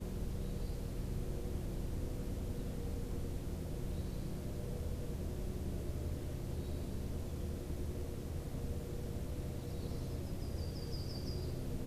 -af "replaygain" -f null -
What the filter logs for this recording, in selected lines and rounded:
track_gain = +29.2 dB
track_peak = 0.032